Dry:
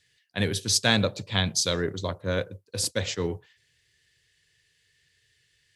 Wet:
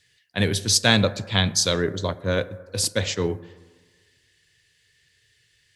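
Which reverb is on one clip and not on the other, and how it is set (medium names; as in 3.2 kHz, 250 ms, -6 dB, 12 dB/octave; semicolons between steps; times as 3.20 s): plate-style reverb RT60 1.5 s, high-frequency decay 0.3×, DRR 16.5 dB; trim +4 dB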